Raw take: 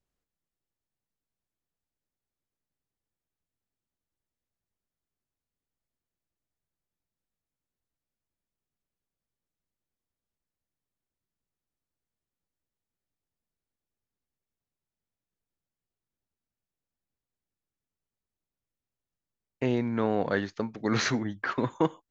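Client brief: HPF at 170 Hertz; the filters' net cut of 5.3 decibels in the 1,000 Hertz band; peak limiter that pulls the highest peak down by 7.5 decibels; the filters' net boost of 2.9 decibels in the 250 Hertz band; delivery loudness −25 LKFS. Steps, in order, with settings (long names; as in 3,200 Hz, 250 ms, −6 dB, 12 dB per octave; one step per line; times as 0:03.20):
high-pass filter 170 Hz
parametric band 250 Hz +5 dB
parametric band 1,000 Hz −7.5 dB
level +6 dB
brickwall limiter −13.5 dBFS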